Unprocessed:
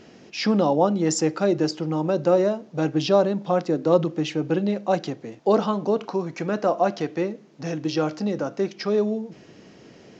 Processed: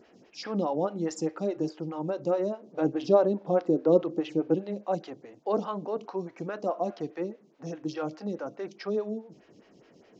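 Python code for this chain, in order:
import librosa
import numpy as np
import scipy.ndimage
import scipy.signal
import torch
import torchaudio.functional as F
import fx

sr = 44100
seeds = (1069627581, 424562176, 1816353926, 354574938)

y = fx.peak_eq(x, sr, hz=390.0, db=6.5, octaves=2.3, at=(2.63, 4.55))
y = fx.stagger_phaser(y, sr, hz=4.8)
y = y * 10.0 ** (-6.5 / 20.0)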